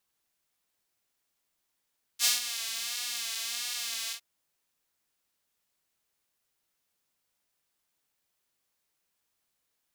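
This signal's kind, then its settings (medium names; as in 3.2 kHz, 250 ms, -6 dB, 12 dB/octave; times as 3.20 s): synth patch with vibrato A#3, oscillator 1 saw, oscillator 2 square, interval 0 st, detune 19 cents, oscillator 2 level -4 dB, sub -27 dB, filter highpass, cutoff 3.5 kHz, Q 0.96, filter envelope 0.5 oct, attack 59 ms, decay 0.15 s, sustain -13 dB, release 0.09 s, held 1.92 s, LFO 1.5 Hz, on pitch 61 cents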